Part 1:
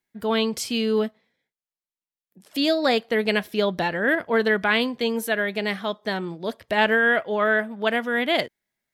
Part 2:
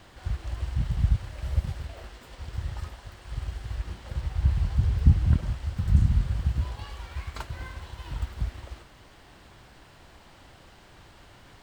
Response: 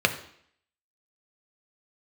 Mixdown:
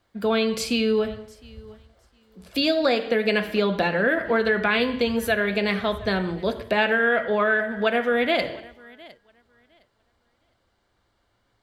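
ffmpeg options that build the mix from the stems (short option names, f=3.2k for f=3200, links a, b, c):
-filter_complex "[0:a]volume=-5dB,asplit=4[a][b][c][d];[b]volume=-6dB[e];[c]volume=-18dB[f];[1:a]volume=-19.5dB,asplit=2[g][h];[h]volume=-18dB[i];[d]apad=whole_len=512715[j];[g][j]sidechaincompress=threshold=-30dB:ratio=8:attack=16:release=267[k];[2:a]atrim=start_sample=2205[l];[e][i]amix=inputs=2:normalize=0[m];[m][l]afir=irnorm=-1:irlink=0[n];[f]aecho=0:1:710|1420|2130:1|0.19|0.0361[o];[a][k][n][o]amix=inputs=4:normalize=0,acompressor=threshold=-19dB:ratio=3"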